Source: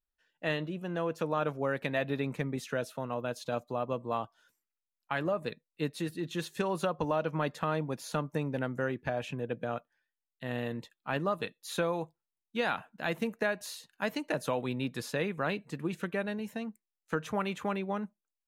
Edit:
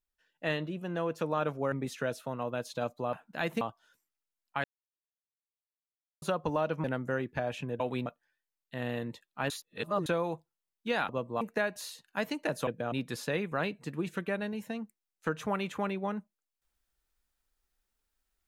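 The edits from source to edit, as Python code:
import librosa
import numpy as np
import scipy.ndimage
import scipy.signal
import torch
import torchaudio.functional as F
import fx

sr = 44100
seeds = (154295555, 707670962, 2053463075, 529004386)

y = fx.edit(x, sr, fx.cut(start_s=1.72, length_s=0.71),
    fx.swap(start_s=3.84, length_s=0.32, other_s=12.78, other_length_s=0.48),
    fx.silence(start_s=5.19, length_s=1.58),
    fx.cut(start_s=7.39, length_s=1.15),
    fx.swap(start_s=9.5, length_s=0.25, other_s=14.52, other_length_s=0.26),
    fx.reverse_span(start_s=11.19, length_s=0.56), tone=tone)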